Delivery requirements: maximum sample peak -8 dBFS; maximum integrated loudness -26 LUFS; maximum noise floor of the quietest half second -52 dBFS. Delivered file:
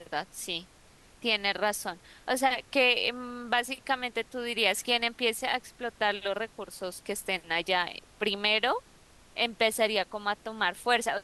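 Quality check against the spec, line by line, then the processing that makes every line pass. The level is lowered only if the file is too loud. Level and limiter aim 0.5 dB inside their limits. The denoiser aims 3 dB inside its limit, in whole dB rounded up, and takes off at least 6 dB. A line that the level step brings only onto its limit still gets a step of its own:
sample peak -10.0 dBFS: OK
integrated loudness -29.0 LUFS: OK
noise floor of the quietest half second -57 dBFS: OK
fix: none

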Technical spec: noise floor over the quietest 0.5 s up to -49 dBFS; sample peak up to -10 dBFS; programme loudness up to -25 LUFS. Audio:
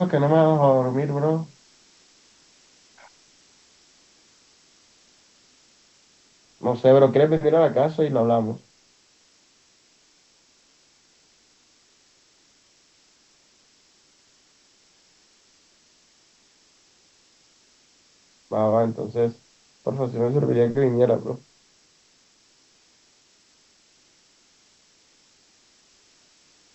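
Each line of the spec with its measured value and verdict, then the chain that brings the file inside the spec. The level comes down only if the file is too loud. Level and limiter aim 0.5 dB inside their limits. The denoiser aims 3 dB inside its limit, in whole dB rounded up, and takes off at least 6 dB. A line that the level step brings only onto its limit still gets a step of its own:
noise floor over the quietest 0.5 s -60 dBFS: OK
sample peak -4.5 dBFS: fail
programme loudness -21.0 LUFS: fail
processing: gain -4.5 dB; limiter -10.5 dBFS

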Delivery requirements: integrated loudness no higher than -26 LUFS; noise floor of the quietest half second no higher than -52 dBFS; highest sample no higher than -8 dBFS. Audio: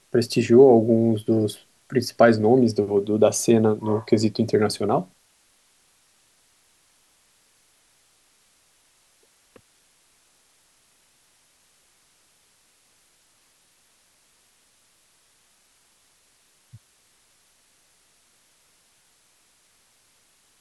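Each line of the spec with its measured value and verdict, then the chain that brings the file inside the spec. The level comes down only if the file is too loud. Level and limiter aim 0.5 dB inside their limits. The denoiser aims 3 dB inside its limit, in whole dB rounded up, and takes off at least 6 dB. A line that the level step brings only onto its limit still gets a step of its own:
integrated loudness -19.5 LUFS: fail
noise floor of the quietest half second -62 dBFS: OK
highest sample -4.0 dBFS: fail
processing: gain -7 dB

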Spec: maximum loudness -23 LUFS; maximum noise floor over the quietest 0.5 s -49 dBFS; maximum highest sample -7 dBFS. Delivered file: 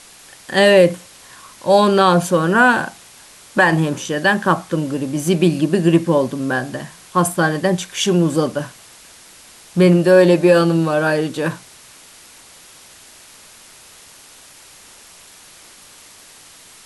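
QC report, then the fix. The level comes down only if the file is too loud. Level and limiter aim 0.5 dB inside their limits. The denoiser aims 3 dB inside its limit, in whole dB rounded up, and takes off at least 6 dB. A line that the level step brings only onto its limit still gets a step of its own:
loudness -16.0 LUFS: fail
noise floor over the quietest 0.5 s -44 dBFS: fail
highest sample -2.0 dBFS: fail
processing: gain -7.5 dB

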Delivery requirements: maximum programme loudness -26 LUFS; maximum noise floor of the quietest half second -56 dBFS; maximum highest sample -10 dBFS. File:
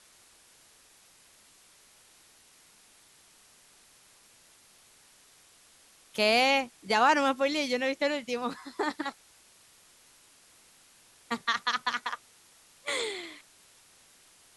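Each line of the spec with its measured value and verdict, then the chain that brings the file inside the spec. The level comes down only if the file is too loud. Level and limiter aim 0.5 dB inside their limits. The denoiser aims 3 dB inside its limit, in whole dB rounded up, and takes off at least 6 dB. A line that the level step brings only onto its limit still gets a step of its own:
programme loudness -28.5 LUFS: OK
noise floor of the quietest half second -60 dBFS: OK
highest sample -11.0 dBFS: OK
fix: none

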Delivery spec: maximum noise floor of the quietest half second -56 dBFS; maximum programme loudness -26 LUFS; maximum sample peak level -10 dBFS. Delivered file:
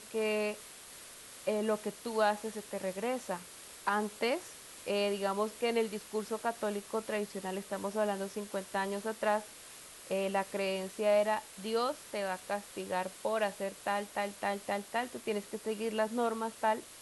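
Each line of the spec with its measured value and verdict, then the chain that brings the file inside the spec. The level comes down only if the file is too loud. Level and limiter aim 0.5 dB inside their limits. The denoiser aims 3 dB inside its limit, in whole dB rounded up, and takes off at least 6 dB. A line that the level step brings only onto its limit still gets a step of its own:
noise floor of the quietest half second -51 dBFS: fail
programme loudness -34.5 LUFS: OK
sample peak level -16.5 dBFS: OK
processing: denoiser 8 dB, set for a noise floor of -51 dBFS

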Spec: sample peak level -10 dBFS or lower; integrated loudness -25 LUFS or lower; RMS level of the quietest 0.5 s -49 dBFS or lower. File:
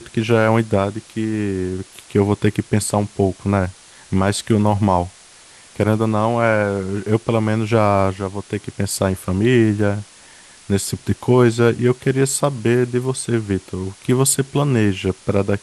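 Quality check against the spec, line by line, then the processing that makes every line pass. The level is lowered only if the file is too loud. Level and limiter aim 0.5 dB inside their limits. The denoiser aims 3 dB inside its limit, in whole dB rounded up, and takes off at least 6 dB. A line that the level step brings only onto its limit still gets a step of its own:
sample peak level -2.5 dBFS: fail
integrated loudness -19.0 LUFS: fail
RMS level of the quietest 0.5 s -45 dBFS: fail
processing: gain -6.5 dB; limiter -10.5 dBFS

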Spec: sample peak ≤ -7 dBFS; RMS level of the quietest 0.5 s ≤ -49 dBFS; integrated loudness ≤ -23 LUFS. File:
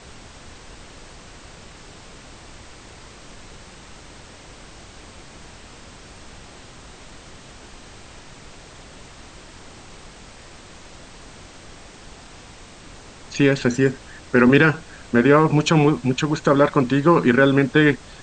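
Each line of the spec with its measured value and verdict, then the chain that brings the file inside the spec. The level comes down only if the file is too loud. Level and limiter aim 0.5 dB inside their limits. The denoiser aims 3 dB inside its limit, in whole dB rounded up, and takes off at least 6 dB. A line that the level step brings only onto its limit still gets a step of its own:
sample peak -3.5 dBFS: fail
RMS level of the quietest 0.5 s -43 dBFS: fail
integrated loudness -17.5 LUFS: fail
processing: denoiser 6 dB, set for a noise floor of -43 dBFS; gain -6 dB

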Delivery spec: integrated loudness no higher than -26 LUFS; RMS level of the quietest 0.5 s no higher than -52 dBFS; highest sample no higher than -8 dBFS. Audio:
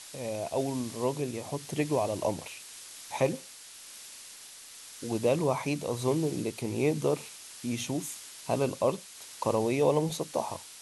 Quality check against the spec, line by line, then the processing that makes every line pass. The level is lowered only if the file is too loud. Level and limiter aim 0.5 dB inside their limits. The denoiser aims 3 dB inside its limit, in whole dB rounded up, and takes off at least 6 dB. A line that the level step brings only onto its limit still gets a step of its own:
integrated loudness -31.0 LUFS: OK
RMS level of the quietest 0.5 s -48 dBFS: fail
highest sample -13.0 dBFS: OK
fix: denoiser 7 dB, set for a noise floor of -48 dBFS

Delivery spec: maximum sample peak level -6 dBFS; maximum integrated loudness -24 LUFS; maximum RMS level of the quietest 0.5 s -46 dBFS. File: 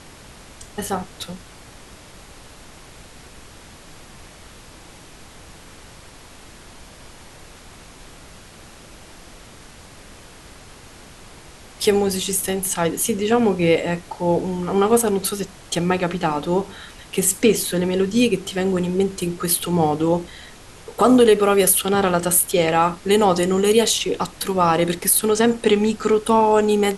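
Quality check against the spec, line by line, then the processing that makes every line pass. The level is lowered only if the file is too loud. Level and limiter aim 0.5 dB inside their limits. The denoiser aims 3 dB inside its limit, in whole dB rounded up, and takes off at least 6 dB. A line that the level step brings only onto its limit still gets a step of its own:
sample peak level -4.0 dBFS: fail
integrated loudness -19.0 LUFS: fail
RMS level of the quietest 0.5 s -43 dBFS: fail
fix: gain -5.5 dB

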